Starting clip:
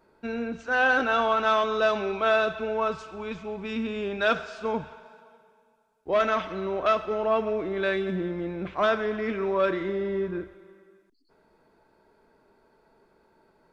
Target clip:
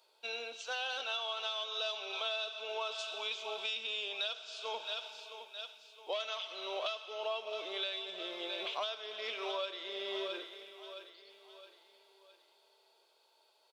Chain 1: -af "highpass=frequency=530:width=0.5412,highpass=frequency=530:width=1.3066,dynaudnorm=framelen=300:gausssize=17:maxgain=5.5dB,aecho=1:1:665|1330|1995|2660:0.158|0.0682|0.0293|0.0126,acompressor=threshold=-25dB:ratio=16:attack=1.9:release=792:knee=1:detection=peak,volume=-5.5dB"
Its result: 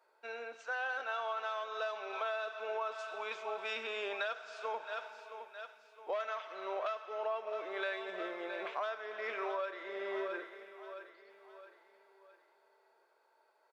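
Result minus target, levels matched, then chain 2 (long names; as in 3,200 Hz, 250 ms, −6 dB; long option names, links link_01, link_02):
4,000 Hz band −11.5 dB
-af "highpass=frequency=530:width=0.5412,highpass=frequency=530:width=1.3066,highshelf=frequency=2400:width_type=q:width=3:gain=10.5,dynaudnorm=framelen=300:gausssize=17:maxgain=5.5dB,aecho=1:1:665|1330|1995|2660:0.158|0.0682|0.0293|0.0126,acompressor=threshold=-25dB:ratio=16:attack=1.9:release=792:knee=1:detection=peak,volume=-5.5dB"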